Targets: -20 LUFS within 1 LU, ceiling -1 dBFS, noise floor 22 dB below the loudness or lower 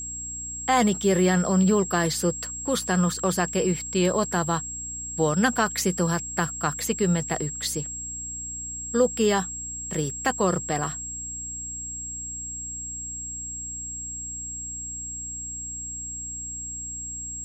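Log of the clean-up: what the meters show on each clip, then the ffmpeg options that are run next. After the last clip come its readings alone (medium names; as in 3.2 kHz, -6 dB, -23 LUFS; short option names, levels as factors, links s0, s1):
hum 60 Hz; highest harmonic 300 Hz; hum level -42 dBFS; steady tone 7.6 kHz; tone level -32 dBFS; loudness -26.0 LUFS; peak level -8.0 dBFS; loudness target -20.0 LUFS
-> -af "bandreject=f=60:t=h:w=4,bandreject=f=120:t=h:w=4,bandreject=f=180:t=h:w=4,bandreject=f=240:t=h:w=4,bandreject=f=300:t=h:w=4"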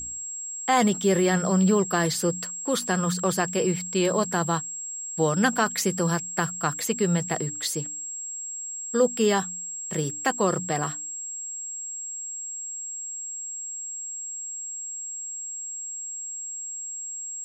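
hum not found; steady tone 7.6 kHz; tone level -32 dBFS
-> -af "bandreject=f=7600:w=30"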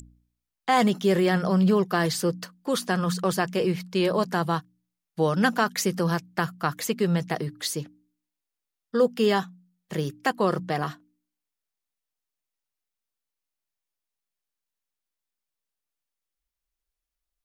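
steady tone not found; loudness -25.5 LUFS; peak level -7.5 dBFS; loudness target -20.0 LUFS
-> -af "volume=1.88"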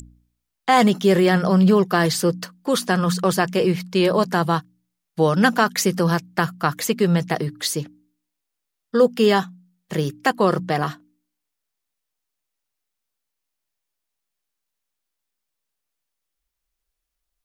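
loudness -20.0 LUFS; peak level -2.0 dBFS; noise floor -81 dBFS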